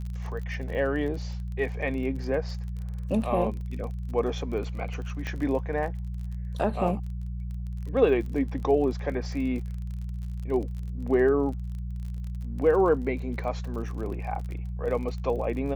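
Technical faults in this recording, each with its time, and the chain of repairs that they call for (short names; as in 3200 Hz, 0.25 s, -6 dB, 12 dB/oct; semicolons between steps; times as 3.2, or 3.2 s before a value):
crackle 36/s -36 dBFS
hum 60 Hz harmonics 3 -33 dBFS
5.27 pop -20 dBFS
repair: de-click; de-hum 60 Hz, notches 3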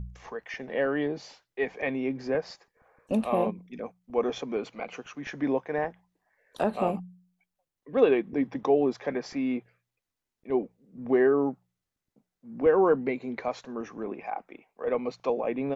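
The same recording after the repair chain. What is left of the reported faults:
5.27 pop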